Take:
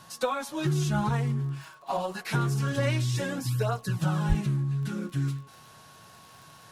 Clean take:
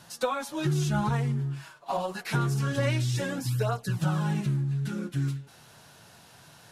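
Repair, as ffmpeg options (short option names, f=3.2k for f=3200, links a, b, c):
-filter_complex "[0:a]adeclick=t=4,bandreject=f=1.1k:w=30,asplit=3[a][b][c];[a]afade=t=out:st=4.28:d=0.02[d];[b]highpass=f=140:w=0.5412,highpass=f=140:w=1.3066,afade=t=in:st=4.28:d=0.02,afade=t=out:st=4.4:d=0.02[e];[c]afade=t=in:st=4.4:d=0.02[f];[d][e][f]amix=inputs=3:normalize=0"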